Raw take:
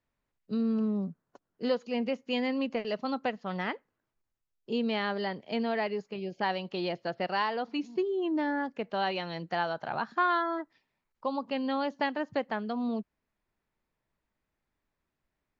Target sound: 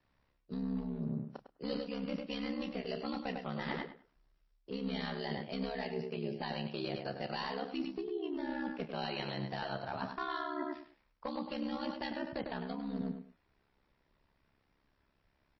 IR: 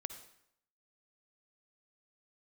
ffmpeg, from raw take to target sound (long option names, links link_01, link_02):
-filter_complex "[0:a]acrossover=split=240|3000[link_01][link_02][link_03];[link_02]acompressor=threshold=-36dB:ratio=5[link_04];[link_01][link_04][link_03]amix=inputs=3:normalize=0,aeval=exprs='clip(val(0),-1,0.0316)':channel_layout=same,asplit=2[link_05][link_06];[link_06]adelay=102,lowpass=frequency=3400:poles=1,volume=-7dB,asplit=2[link_07][link_08];[link_08]adelay=102,lowpass=frequency=3400:poles=1,volume=0.23,asplit=2[link_09][link_10];[link_10]adelay=102,lowpass=frequency=3400:poles=1,volume=0.23[link_11];[link_07][link_09][link_11]amix=inputs=3:normalize=0[link_12];[link_05][link_12]amix=inputs=2:normalize=0,aeval=exprs='val(0)*sin(2*PI*34*n/s)':channel_layout=same,areverse,acompressor=threshold=-45dB:ratio=16,areverse,asplit=2[link_13][link_14];[link_14]adelay=31,volume=-12dB[link_15];[link_13][link_15]amix=inputs=2:normalize=0,volume=11dB" -ar 16000 -c:a libmp3lame -b:a 24k